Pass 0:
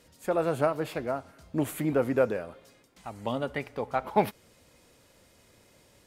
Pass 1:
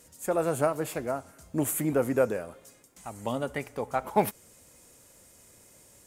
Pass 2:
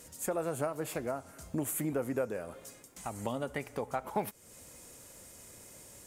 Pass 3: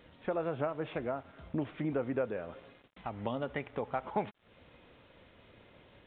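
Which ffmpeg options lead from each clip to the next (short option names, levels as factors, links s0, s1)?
-af "highshelf=f=5600:t=q:w=1.5:g=9"
-af "acompressor=threshold=0.0112:ratio=2.5,volume=1.5"
-af "aeval=exprs='val(0)*gte(abs(val(0)),0.00211)':c=same,aresample=8000,aresample=44100"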